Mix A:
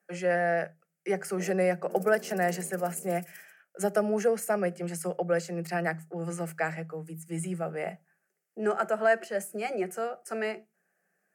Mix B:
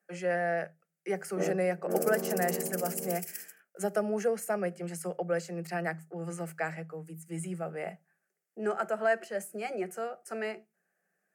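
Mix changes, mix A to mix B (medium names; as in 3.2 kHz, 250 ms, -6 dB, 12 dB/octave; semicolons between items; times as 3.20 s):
speech -3.5 dB; background +11.5 dB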